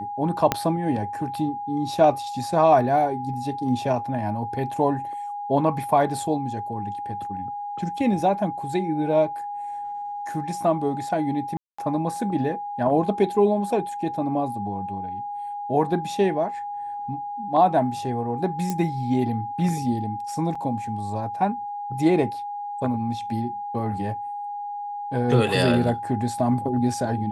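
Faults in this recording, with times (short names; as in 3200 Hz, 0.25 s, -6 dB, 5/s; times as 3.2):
tone 820 Hz -29 dBFS
0.52 pop -5 dBFS
11.57–11.79 gap 0.215 s
18.7 pop
20.55 gap 5 ms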